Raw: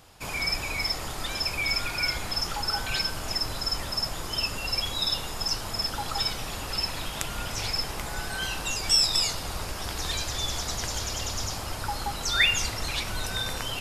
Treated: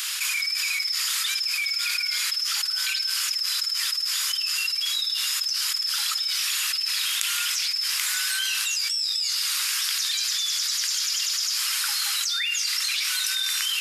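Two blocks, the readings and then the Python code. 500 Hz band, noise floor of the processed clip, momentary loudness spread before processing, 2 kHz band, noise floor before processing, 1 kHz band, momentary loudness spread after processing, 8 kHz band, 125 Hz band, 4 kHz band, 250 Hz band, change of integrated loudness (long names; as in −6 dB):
below −35 dB, −29 dBFS, 10 LU, +2.5 dB, −35 dBFS, −6.5 dB, 0 LU, +8.0 dB, below −40 dB, +5.0 dB, below −40 dB, +5.0 dB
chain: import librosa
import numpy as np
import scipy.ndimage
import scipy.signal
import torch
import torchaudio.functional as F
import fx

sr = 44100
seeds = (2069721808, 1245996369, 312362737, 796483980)

y = scipy.signal.sosfilt(scipy.signal.bessel(8, 2400.0, 'highpass', norm='mag', fs=sr, output='sos'), x)
y = fx.dynamic_eq(y, sr, hz=4900.0, q=5.0, threshold_db=-43.0, ratio=4.0, max_db=7)
y = fx.env_flatten(y, sr, amount_pct=100)
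y = F.gain(torch.from_numpy(y), -9.5).numpy()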